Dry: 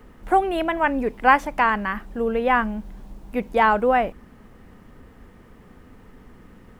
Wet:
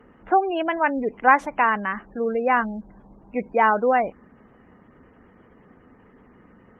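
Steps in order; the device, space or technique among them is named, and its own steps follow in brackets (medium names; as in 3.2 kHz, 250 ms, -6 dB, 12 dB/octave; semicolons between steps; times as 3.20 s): 0.64–1.22 s: gate with hold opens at -35 dBFS; noise-suppressed video call (high-pass 180 Hz 6 dB/octave; spectral gate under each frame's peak -25 dB strong; Opus 24 kbps 48 kHz)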